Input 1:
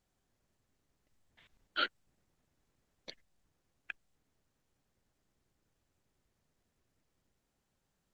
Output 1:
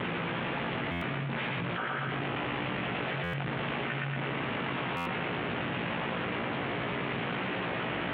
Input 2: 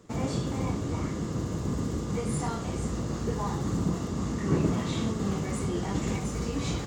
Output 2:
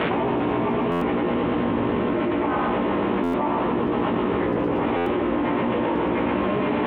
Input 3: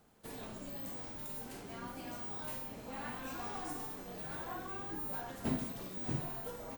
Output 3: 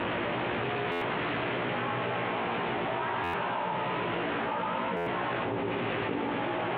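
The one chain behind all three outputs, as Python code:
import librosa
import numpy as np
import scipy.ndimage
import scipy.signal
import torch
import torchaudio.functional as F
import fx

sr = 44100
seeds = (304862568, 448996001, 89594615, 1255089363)

p1 = fx.delta_mod(x, sr, bps=16000, step_db=-39.5)
p2 = 10.0 ** (-25.5 / 20.0) * np.tanh(p1 / 10.0 ** (-25.5 / 20.0))
p3 = p1 + (p2 * librosa.db_to_amplitude(-9.5))
p4 = p3 * np.sin(2.0 * np.pi * 140.0 * np.arange(len(p3)) / sr)
p5 = p4 + 10.0 ** (-23.5 / 20.0) * np.pad(p4, (int(328 * sr / 1000.0), 0))[:len(p4)]
p6 = np.clip(p5, -10.0 ** (-18.0 / 20.0), 10.0 ** (-18.0 / 20.0))
p7 = scipy.signal.sosfilt(scipy.signal.butter(2, 150.0, 'highpass', fs=sr, output='sos'), p6)
p8 = p7 + fx.echo_feedback(p7, sr, ms=116, feedback_pct=42, wet_db=-3.5, dry=0)
p9 = fx.dynamic_eq(p8, sr, hz=890.0, q=2.0, threshold_db=-48.0, ratio=4.0, max_db=6)
p10 = fx.doubler(p9, sr, ms=17.0, db=-3.0)
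p11 = fx.buffer_glitch(p10, sr, at_s=(0.91, 3.23, 4.96), block=512, repeats=8)
y = fx.env_flatten(p11, sr, amount_pct=100)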